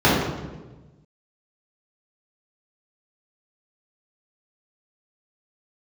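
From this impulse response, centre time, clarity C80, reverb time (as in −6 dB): 75 ms, 3.0 dB, 1.2 s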